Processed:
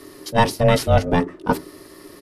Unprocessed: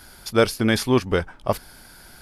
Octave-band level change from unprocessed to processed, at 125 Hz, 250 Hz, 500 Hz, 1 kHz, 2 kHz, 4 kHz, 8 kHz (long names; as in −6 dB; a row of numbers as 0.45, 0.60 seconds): +6.0, 0.0, +2.0, +7.5, +0.5, −0.5, −0.5 decibels